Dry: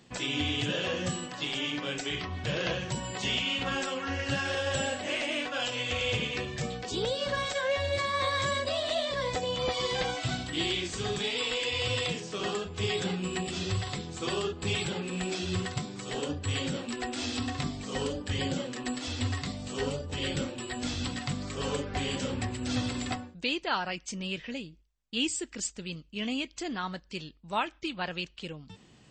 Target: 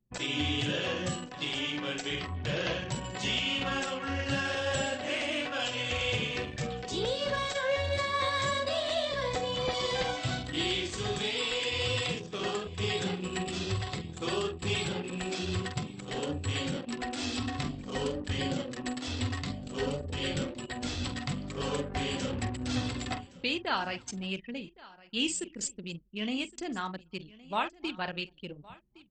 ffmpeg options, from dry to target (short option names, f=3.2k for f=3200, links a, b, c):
-filter_complex "[0:a]asplit=2[a][b];[b]aecho=0:1:47|273:0.335|0.106[c];[a][c]amix=inputs=2:normalize=0,anlmdn=1.58,asplit=2[d][e];[e]aecho=0:1:1115:0.0891[f];[d][f]amix=inputs=2:normalize=0,volume=-1dB"